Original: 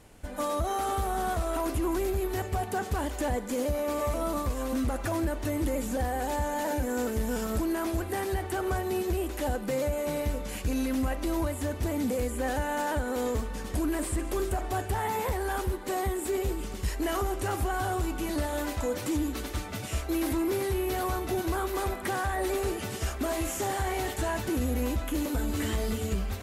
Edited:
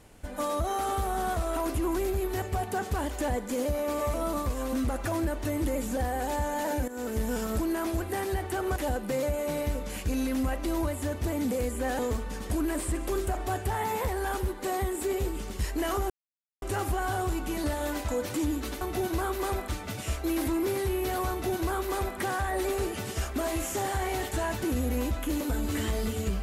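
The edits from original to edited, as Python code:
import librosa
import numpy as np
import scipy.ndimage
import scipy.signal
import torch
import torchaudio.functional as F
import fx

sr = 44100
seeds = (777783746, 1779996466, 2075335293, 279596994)

y = fx.edit(x, sr, fx.fade_in_from(start_s=6.88, length_s=0.29, floor_db=-14.0),
    fx.cut(start_s=8.76, length_s=0.59),
    fx.cut(start_s=12.58, length_s=0.65),
    fx.insert_silence(at_s=17.34, length_s=0.52),
    fx.duplicate(start_s=21.15, length_s=0.87, to_s=19.53), tone=tone)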